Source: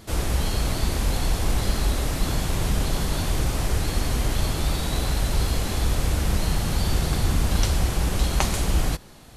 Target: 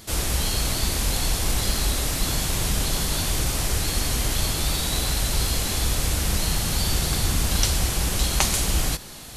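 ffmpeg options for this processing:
-af "highshelf=f=2.4k:g=10.5,areverse,acompressor=mode=upward:threshold=-30dB:ratio=2.5,areverse,volume=-2dB"

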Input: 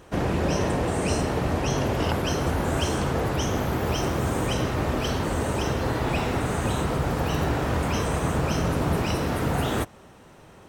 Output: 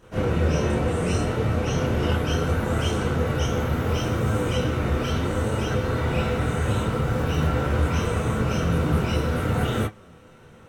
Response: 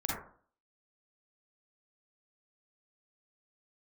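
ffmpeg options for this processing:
-filter_complex "[0:a]flanger=delay=9:depth=5:regen=62:speed=0.72:shape=sinusoidal[a];[1:a]atrim=start_sample=2205,afade=t=out:st=0.14:d=0.01,atrim=end_sample=6615,asetrate=74970,aresample=44100[b];[a][b]afir=irnorm=-1:irlink=0,volume=3dB"

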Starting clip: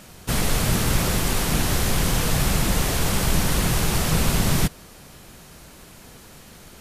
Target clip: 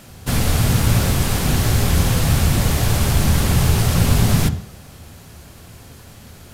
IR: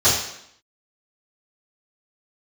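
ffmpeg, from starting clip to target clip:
-filter_complex "[0:a]asplit=2[a][b];[b]aemphasis=mode=reproduction:type=bsi[c];[1:a]atrim=start_sample=2205[d];[c][d]afir=irnorm=-1:irlink=0,volume=-29dB[e];[a][e]amix=inputs=2:normalize=0,asetrate=45938,aresample=44100,volume=1dB"

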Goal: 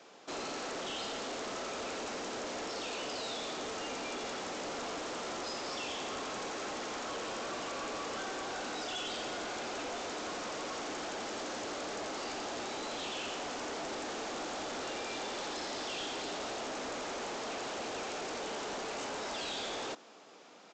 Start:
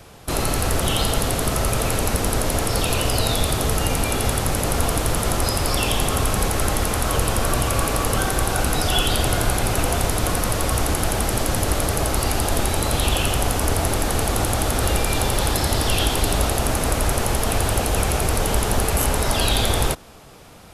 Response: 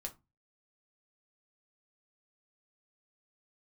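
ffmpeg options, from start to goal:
-af "highpass=f=250:w=0.5412,highpass=f=250:w=1.3066,aresample=16000,asoftclip=type=tanh:threshold=-27dB,aresample=44100,volume=-9dB"

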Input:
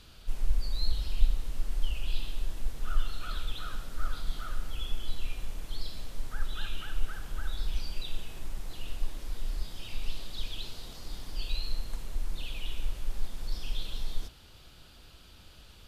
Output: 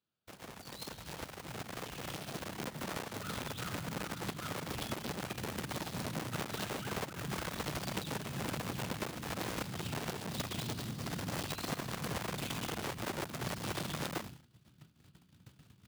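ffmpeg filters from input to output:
-filter_complex "[0:a]asettb=1/sr,asplit=3[a][b][c];[a]atrim=end=2.524[d];[b]atrim=start=2.52:end=3.14,asetpts=PTS-STARTPTS,afade=t=in:d=0.004:c=qsin,afade=t=out:st=0.616:d=0.004:c=qsin,aecho=1:1:5.3:0.34,atrim=end_sample=27342[e];[c]atrim=start=3.136[f];[d][e]acrossfade=d=0.004:c1=hsin:c2=qsin[g];[g][f]acrossfade=d=0.004:c1=qsin:c2=hsin,acompressor=threshold=-30dB:ratio=6,asubboost=boost=10:cutoff=180,agate=range=-33dB:threshold=-24dB:ratio=3:detection=peak,highshelf=f=3k:g=-11,asplit=2[h][i];[i]adelay=68,lowpass=f=870:p=1,volume=-19.5dB,asplit=2[j][k];[k]adelay=68,lowpass=f=870:p=1,volume=0.53,asplit=2[l][m];[m]adelay=68,lowpass=f=870:p=1,volume=0.53,asplit=2[n][o];[o]adelay=68,lowpass=f=870:p=1,volume=0.53[p];[j][l][n][p]amix=inputs=4:normalize=0[q];[h][q]amix=inputs=2:normalize=0,acrusher=bits=7:mode=log:mix=0:aa=0.000001,highpass=f=130:w=0.5412,highpass=f=130:w=1.3066,volume=2dB"

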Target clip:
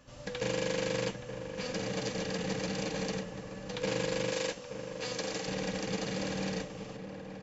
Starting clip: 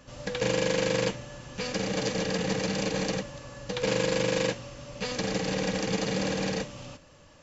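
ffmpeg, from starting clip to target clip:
-filter_complex "[0:a]asettb=1/sr,asplit=3[a][b][c];[a]atrim=end=4.314[d];[b]atrim=start=4.31:end=5.47,asetpts=PTS-STARTPTS,afade=t=in:d=0.004:c=qsin,afade=t=out:st=1.156:d=0.004:c=qsin,bass=f=250:g=-9,treble=f=4k:g=4[e];[c]atrim=start=5.466[f];[d][e]acrossfade=d=0.004:c1=hsin:c2=qsin[g];[g][f]acrossfade=d=0.004:c1=qsin:c2=hsin,asplit=2[h][i];[i]adelay=874.6,volume=-8dB,highshelf=f=4k:g=-19.7[j];[h][j]amix=inputs=2:normalize=0,volume=-6dB"

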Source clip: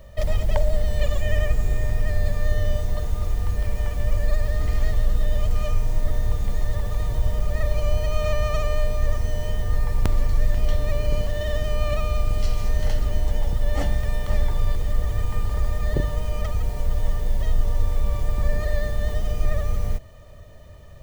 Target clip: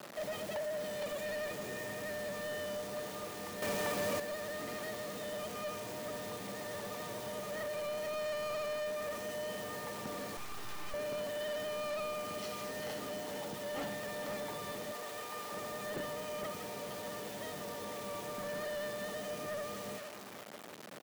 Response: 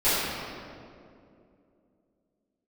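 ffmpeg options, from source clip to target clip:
-filter_complex "[0:a]highshelf=f=5k:g=-6.5,asplit=2[a][b];[b]aecho=0:1:463|926:0.224|0.047[c];[a][c]amix=inputs=2:normalize=0,asettb=1/sr,asplit=3[d][e][f];[d]atrim=end=14.914[g];[e]atrim=start=14.91:end=15.52,asetpts=PTS-STARTPTS,afade=t=in:d=0.004:c=qsin,afade=t=out:st=0.606:d=0.004:c=qsin,acrossover=split=390[h][i];[h]acompressor=threshold=-39dB:ratio=2[j];[j][i]amix=inputs=2:normalize=0[k];[f]atrim=start=15.516[l];[g][k]acrossfade=d=0.004:c1=hsin:c2=qsin[m];[m][l]acrossfade=d=0.004:c1=qsin:c2=hsin,acrusher=bits=6:mix=0:aa=0.000001,highpass=f=200:w=0.5412,highpass=f=200:w=1.3066,asoftclip=type=tanh:threshold=-32.5dB,asettb=1/sr,asplit=3[n][o][p];[n]atrim=end=3.624[q];[o]atrim=start=3.62:end=4.2,asetpts=PTS-STARTPTS,afade=t=in:d=0.004:c=qsin,afade=t=out:st=0.576:d=0.004:c=qsin,acontrast=84[r];[p]atrim=start=4.196[s];[q][r]acrossfade=d=0.004:c1=hsin:c2=qsin[t];[t][s]acrossfade=d=0.004:c1=qsin:c2=hsin,asettb=1/sr,asplit=3[u][v][w];[u]atrim=end=10.374[x];[v]atrim=start=10.37:end=10.94,asetpts=PTS-STARTPTS,afade=t=in:d=0.004:c=qsin,afade=t=out:st=0.566:d=0.004:c=qsin,aeval=exprs='abs(val(0))':c=same[y];[w]atrim=start=10.936[z];[x][y]acrossfade=d=0.004:c1=hsin:c2=qsin[aa];[aa][z]acrossfade=d=0.004:c1=qsin:c2=hsin,volume=-2.5dB"

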